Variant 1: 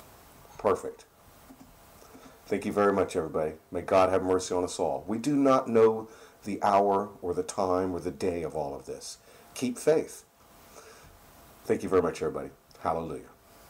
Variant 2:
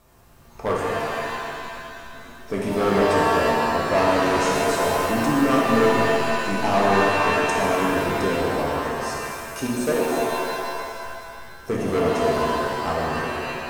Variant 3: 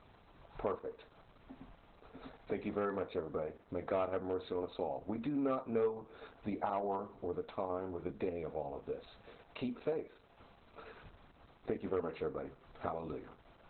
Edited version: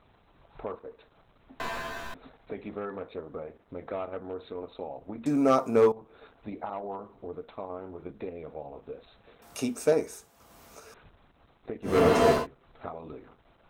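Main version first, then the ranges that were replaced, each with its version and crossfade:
3
0:01.60–0:02.14: punch in from 2
0:05.26–0:05.92: punch in from 1
0:09.42–0:10.94: punch in from 1
0:11.90–0:12.39: punch in from 2, crossfade 0.16 s

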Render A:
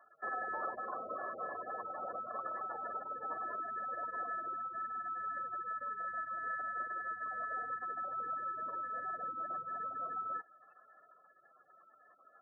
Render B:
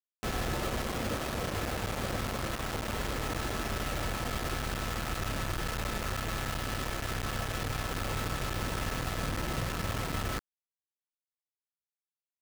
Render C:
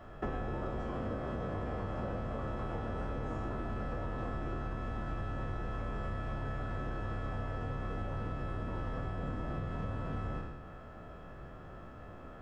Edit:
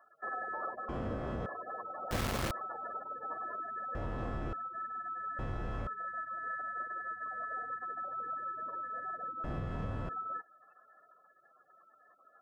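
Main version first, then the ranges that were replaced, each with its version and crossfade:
A
0:00.89–0:01.46: punch in from C
0:02.11–0:02.51: punch in from B
0:03.95–0:04.53: punch in from C
0:05.39–0:05.87: punch in from C
0:09.44–0:10.09: punch in from C

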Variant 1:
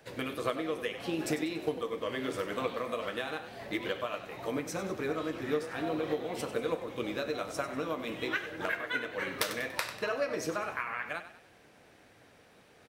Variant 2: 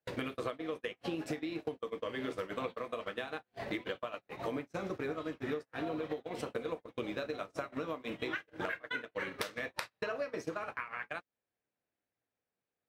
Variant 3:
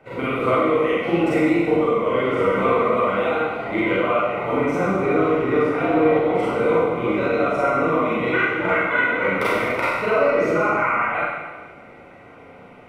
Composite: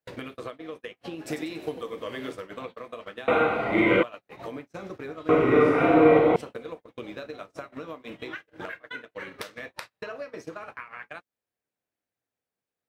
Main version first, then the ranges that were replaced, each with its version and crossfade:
2
0:01.28–0:02.33: punch in from 1, crossfade 0.10 s
0:03.28–0:04.03: punch in from 3
0:05.29–0:06.36: punch in from 3

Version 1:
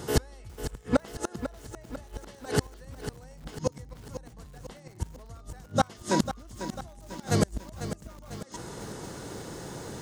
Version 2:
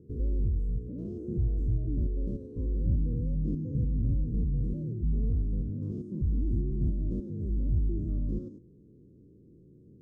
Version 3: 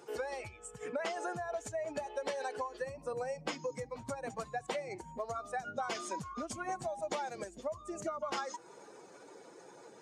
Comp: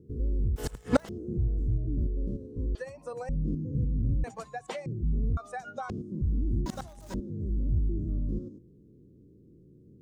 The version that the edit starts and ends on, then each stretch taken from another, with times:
2
0:00.56–0:01.09: punch in from 1
0:02.75–0:03.29: punch in from 3
0:04.24–0:04.86: punch in from 3
0:05.37–0:05.90: punch in from 3
0:06.66–0:07.14: punch in from 1

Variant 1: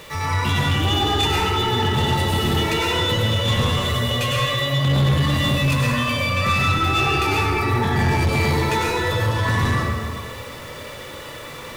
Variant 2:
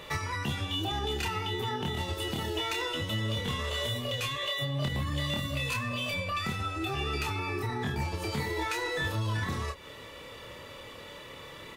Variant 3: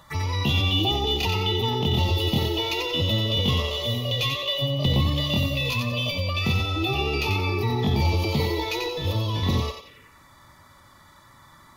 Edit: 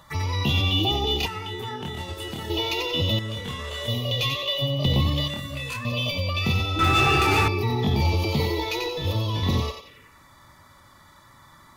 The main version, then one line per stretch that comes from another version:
3
0:01.26–0:02.50: punch in from 2
0:03.19–0:03.88: punch in from 2
0:05.28–0:05.85: punch in from 2
0:06.79–0:07.48: punch in from 1

